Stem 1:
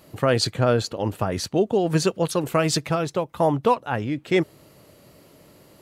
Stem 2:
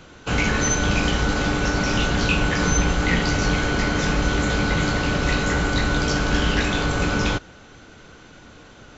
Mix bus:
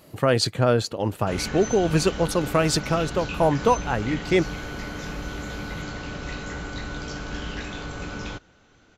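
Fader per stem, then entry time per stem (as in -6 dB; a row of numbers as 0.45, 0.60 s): 0.0, -12.0 dB; 0.00, 1.00 s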